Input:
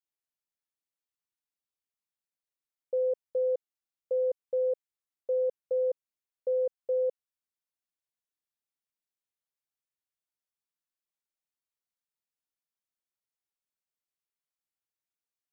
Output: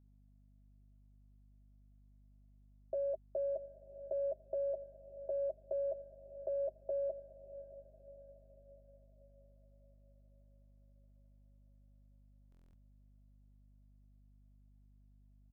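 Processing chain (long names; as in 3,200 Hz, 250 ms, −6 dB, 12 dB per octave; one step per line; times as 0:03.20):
adaptive Wiener filter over 9 samples
comb filter 6.6 ms, depth 94%
brickwall limiter −34.5 dBFS, peak gain reduction 10.5 dB
pair of resonant band-passes 450 Hz, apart 0.81 octaves
frequency shifter +48 Hz
mains hum 50 Hz, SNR 20 dB
feedback delay with all-pass diffusion 641 ms, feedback 51%, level −14 dB
buffer that repeats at 0:12.50, samples 1,024, times 9
level +14 dB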